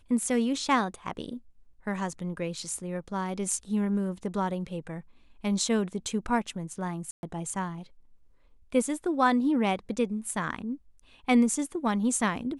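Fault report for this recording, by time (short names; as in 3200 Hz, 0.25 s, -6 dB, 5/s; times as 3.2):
7.11–7.23 gap 0.121 s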